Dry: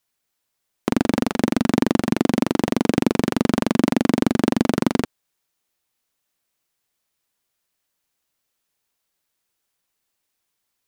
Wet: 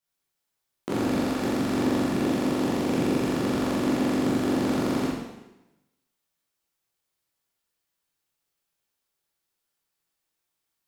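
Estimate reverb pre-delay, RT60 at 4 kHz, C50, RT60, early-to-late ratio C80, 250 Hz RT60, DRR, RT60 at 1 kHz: 7 ms, 0.95 s, -1.0 dB, 1.0 s, 3.0 dB, 1.0 s, -8.5 dB, 1.0 s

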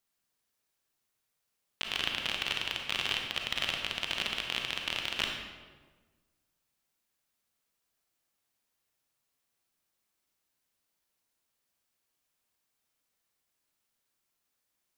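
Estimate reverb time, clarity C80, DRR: 1.4 s, 5.0 dB, 1.5 dB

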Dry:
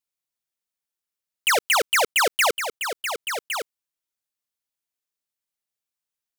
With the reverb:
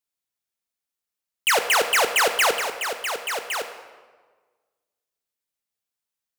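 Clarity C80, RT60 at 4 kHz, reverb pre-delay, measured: 11.0 dB, 1.0 s, 3 ms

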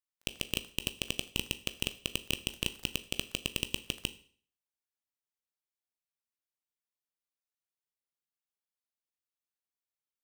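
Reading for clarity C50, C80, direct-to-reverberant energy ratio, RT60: 16.0 dB, 20.0 dB, 10.5 dB, 0.50 s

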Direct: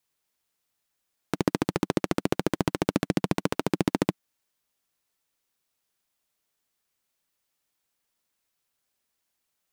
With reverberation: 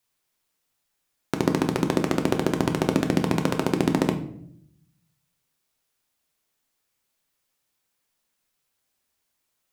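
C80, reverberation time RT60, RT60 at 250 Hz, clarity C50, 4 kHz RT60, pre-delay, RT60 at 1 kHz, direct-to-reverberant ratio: 14.0 dB, 0.65 s, 1.0 s, 11.0 dB, 0.45 s, 8 ms, 0.55 s, 5.0 dB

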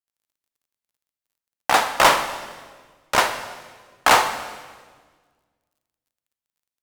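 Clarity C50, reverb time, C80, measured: 9.5 dB, 1.5 s, 11.0 dB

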